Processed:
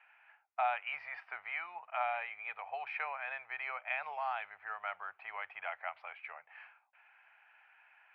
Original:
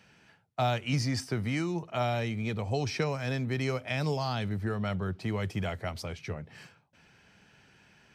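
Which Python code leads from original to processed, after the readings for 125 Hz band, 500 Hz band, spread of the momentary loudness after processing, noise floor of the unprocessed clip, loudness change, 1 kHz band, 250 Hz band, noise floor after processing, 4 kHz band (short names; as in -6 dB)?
under -40 dB, -12.5 dB, 11 LU, -62 dBFS, -7.5 dB, -1.0 dB, under -40 dB, -70 dBFS, -15.0 dB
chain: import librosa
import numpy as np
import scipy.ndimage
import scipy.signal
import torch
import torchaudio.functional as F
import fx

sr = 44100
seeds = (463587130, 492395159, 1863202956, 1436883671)

y = scipy.signal.sosfilt(scipy.signal.ellip(3, 1.0, 50, [750.0, 2500.0], 'bandpass', fs=sr, output='sos'), x)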